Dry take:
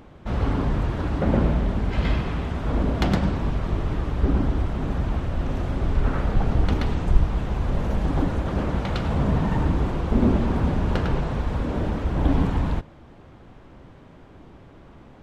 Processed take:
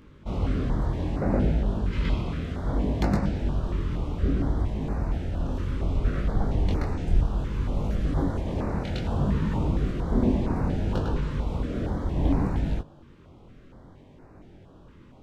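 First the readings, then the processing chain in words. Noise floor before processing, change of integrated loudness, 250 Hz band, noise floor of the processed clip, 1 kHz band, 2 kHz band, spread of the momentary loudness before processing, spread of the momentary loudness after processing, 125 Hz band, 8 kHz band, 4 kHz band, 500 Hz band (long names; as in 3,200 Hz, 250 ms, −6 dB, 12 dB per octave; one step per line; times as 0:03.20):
−48 dBFS, −3.0 dB, −3.0 dB, −51 dBFS, −5.5 dB, −6.5 dB, 5 LU, 5 LU, −3.0 dB, can't be measured, −5.5 dB, −3.5 dB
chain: chorus effect 0.63 Hz, delay 19.5 ms, depth 4.8 ms
notch on a step sequencer 4.3 Hz 720–3,200 Hz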